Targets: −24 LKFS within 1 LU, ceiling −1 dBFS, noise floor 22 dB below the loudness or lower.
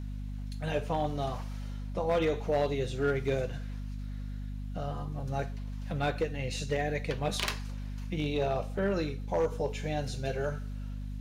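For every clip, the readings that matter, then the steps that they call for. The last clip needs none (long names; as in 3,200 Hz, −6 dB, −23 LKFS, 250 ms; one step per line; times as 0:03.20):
share of clipped samples 0.6%; peaks flattened at −21.5 dBFS; mains hum 50 Hz; hum harmonics up to 250 Hz; level of the hum −35 dBFS; integrated loudness −33.5 LKFS; sample peak −21.5 dBFS; target loudness −24.0 LKFS
→ clipped peaks rebuilt −21.5 dBFS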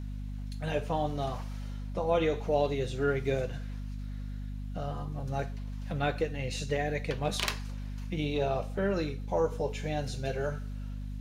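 share of clipped samples 0.0%; mains hum 50 Hz; hum harmonics up to 250 Hz; level of the hum −35 dBFS
→ hum removal 50 Hz, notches 5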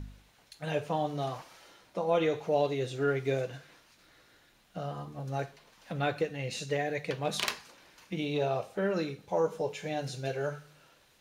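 mains hum none found; integrated loudness −33.0 LKFS; sample peak −13.5 dBFS; target loudness −24.0 LKFS
→ level +9 dB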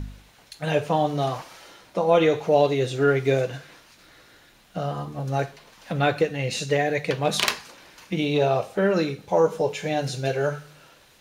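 integrated loudness −24.0 LKFS; sample peak −4.5 dBFS; background noise floor −55 dBFS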